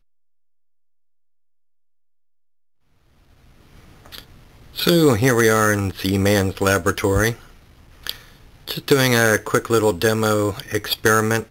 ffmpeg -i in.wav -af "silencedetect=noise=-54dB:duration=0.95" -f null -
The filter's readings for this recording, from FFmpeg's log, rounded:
silence_start: 0.00
silence_end: 2.83 | silence_duration: 2.83